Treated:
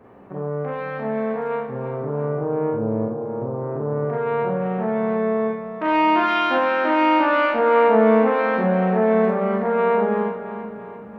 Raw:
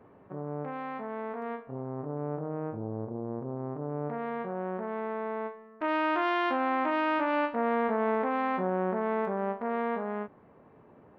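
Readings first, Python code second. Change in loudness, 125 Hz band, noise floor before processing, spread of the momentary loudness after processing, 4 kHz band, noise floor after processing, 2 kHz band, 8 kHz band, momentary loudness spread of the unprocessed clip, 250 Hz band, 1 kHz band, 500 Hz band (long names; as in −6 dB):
+11.0 dB, +11.5 dB, −57 dBFS, 11 LU, +11.5 dB, −36 dBFS, +9.5 dB, can't be measured, 10 LU, +10.5 dB, +10.0 dB, +12.5 dB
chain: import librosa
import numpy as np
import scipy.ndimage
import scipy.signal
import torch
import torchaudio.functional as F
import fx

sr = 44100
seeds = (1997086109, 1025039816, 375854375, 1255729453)

y = fx.echo_split(x, sr, split_hz=310.0, low_ms=497, high_ms=339, feedback_pct=52, wet_db=-10.0)
y = fx.rev_schroeder(y, sr, rt60_s=0.31, comb_ms=32, drr_db=-2.0)
y = y * 10.0 ** (6.0 / 20.0)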